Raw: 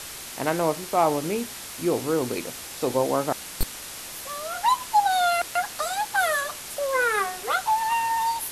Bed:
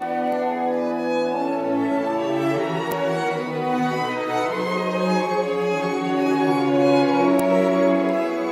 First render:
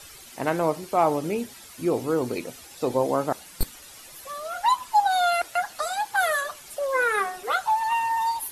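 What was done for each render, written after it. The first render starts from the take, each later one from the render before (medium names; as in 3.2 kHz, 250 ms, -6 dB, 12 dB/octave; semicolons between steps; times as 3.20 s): noise reduction 12 dB, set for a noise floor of -38 dBFS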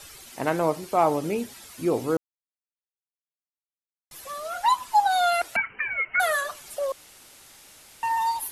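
2.17–4.11 s: mute; 5.56–6.20 s: frequency inversion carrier 3 kHz; 6.92–8.03 s: room tone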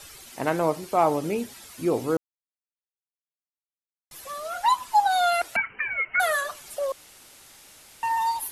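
no audible change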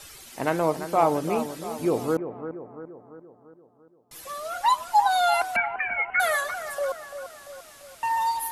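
bucket-brigade echo 342 ms, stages 4096, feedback 53%, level -10 dB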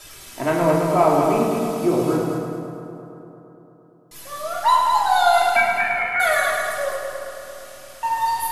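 multi-head delay 106 ms, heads first and second, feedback 49%, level -7 dB; simulated room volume 870 m³, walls furnished, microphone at 2.9 m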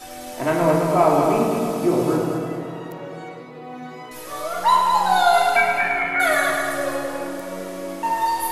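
add bed -13.5 dB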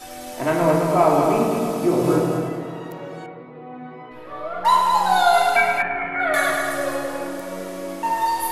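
2.02–2.49 s: doubling 23 ms -3 dB; 3.26–4.65 s: distance through air 470 m; 5.82–6.34 s: distance through air 470 m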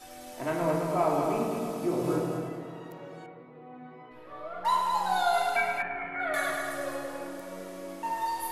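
trim -10 dB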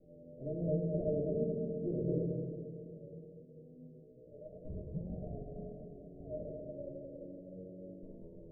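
comb filter that takes the minimum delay 0.41 ms; rippled Chebyshev low-pass 630 Hz, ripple 9 dB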